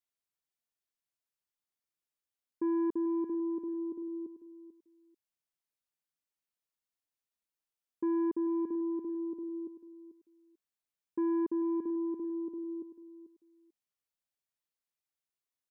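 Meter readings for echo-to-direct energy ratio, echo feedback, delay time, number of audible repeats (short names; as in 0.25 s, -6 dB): -13.0 dB, 19%, 0.441 s, 2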